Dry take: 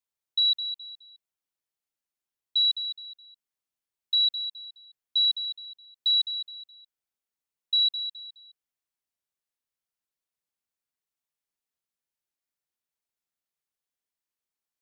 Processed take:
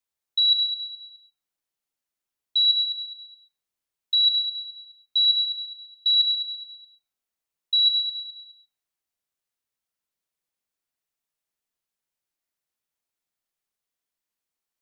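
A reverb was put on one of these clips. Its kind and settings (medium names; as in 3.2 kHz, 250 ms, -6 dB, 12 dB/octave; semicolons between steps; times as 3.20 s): algorithmic reverb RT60 0.73 s, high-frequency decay 0.35×, pre-delay 65 ms, DRR 8.5 dB; trim +2.5 dB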